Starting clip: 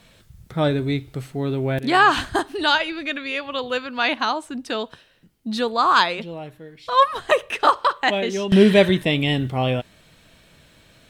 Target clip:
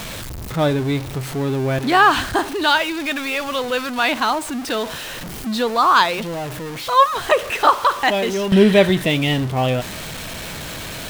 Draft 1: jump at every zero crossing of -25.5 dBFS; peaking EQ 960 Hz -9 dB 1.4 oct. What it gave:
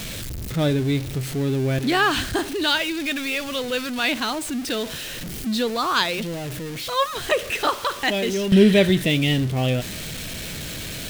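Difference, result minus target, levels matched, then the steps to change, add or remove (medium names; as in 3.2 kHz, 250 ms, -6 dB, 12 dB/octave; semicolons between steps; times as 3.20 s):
1 kHz band -5.5 dB
change: peaking EQ 960 Hz +2 dB 1.4 oct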